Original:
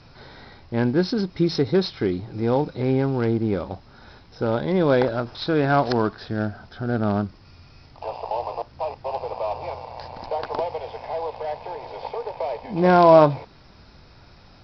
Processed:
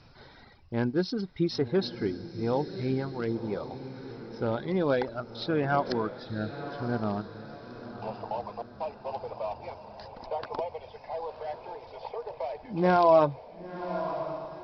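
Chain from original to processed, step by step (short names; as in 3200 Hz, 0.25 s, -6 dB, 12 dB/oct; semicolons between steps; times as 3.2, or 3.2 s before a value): reverb removal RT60 1.9 s; diffused feedback echo 1.03 s, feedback 43%, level -11 dB; gain -6 dB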